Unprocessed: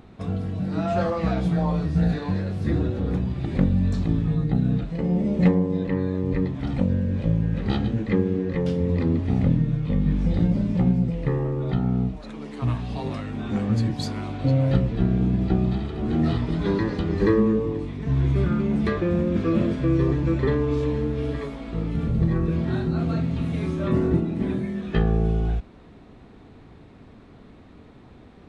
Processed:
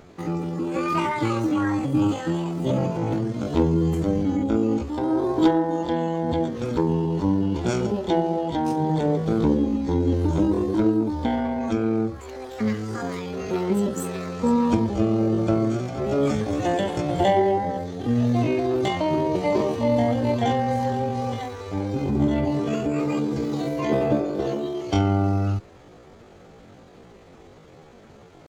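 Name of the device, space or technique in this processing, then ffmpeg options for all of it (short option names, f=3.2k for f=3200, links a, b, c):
chipmunk voice: -af "asetrate=78577,aresample=44100,atempo=0.561231"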